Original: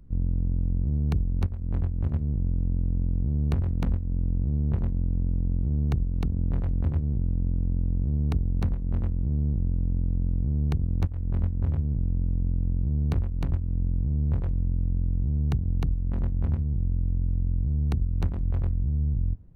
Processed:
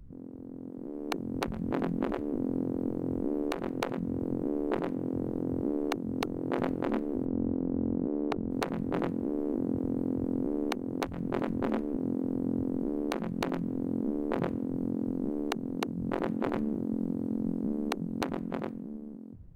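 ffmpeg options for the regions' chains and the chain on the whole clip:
-filter_complex "[0:a]asettb=1/sr,asplit=3[a][b][c];[a]atrim=end=7.254[d];[b]atrim=start=7.25:end=8.51,asetpts=PTS-STARTPTS,afade=t=in:d=0.004:c=qsin,afade=t=out:st=1.256:d=0.004:c=qsin,lowpass=f=1.5k:p=1,lowshelf=f=110:g=-8.5[e];[c]atrim=start=8.506[f];[d][e]acrossfade=d=0.004:c1=hsin:c2=qsin[g];[g][f]acrossfade=d=0.004:c1=qsin:c2=hsin,afftfilt=real='re*lt(hypot(re,im),0.112)':imag='im*lt(hypot(re,im),0.112)':win_size=1024:overlap=0.75,dynaudnorm=f=140:g=17:m=14dB,alimiter=limit=-16.5dB:level=0:latency=1:release=426"

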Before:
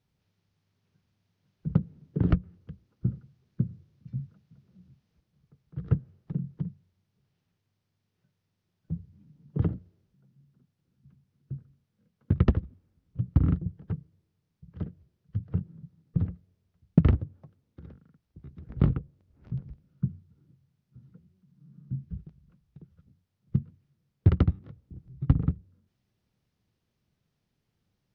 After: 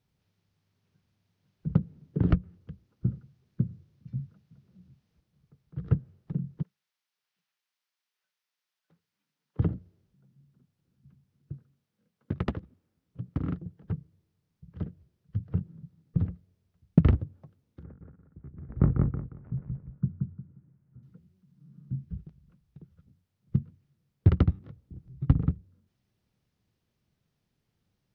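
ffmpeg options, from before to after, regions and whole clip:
-filter_complex "[0:a]asettb=1/sr,asplit=3[a][b][c];[a]atrim=end=6.634[d];[b]atrim=start=6.63:end=9.59,asetpts=PTS-STARTPTS,afade=t=in:d=0.004:c=qsin,afade=t=out:st=2.956:d=0.004:c=qsin,highpass=1.2k,aecho=1:1:733:0.106,atrim=end_sample=130536[e];[c]atrim=start=9.586[f];[d][e]acrossfade=d=0.004:c1=hsin:c2=qsin[g];[g][f]acrossfade=d=0.004:c1=qsin:c2=hsin,asettb=1/sr,asplit=3[h][i][j];[h]atrim=end=11.524[k];[i]atrim=start=11.52:end=13.84,asetpts=PTS-STARTPTS,afade=t=in:d=0.004:c=qsin,afade=t=out:st=2.316:d=0.004:c=qsin,highpass=f=290:p=1,aeval=exprs='clip(val(0),-1,0.0668)':c=same[l];[j]atrim=start=13.836[m];[k][l]acrossfade=d=0.004:c1=hsin:c2=qsin[n];[n][m]acrossfade=d=0.004:c1=qsin:c2=hsin,asettb=1/sr,asplit=3[o][p][q];[o]atrim=end=17.834[r];[p]atrim=start=17.83:end=21.03,asetpts=PTS-STARTPTS,afade=t=in:d=0.004:c=qsin,afade=t=out:st=3.196:d=0.004:c=qsin,lowpass=f=1.8k:w=0.5412,lowpass=f=1.8k:w=1.3066,aecho=1:1:177|354|531|708:0.708|0.184|0.0479|0.0124,atrim=end_sample=141120[s];[q]atrim=start=21.026[t];[r][s]acrossfade=d=0.004:c1=hsin:c2=qsin[u];[u][t]acrossfade=d=0.004:c1=qsin:c2=hsin"

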